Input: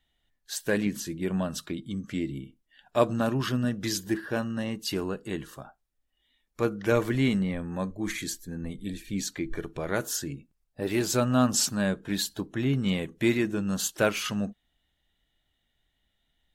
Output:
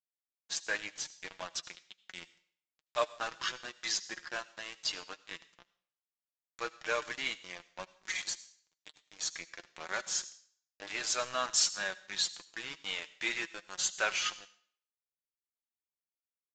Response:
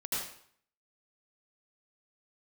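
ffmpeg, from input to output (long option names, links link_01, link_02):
-filter_complex "[0:a]highpass=1100,acrusher=bits=5:mix=0:aa=0.5,flanger=delay=5.2:depth=1.5:regen=41:speed=0.5:shape=triangular,asplit=2[link_01][link_02];[1:a]atrim=start_sample=2205,highshelf=frequency=2800:gain=10[link_03];[link_02][link_03]afir=irnorm=-1:irlink=0,volume=-25.5dB[link_04];[link_01][link_04]amix=inputs=2:normalize=0,aresample=16000,aresample=44100,volume=3dB"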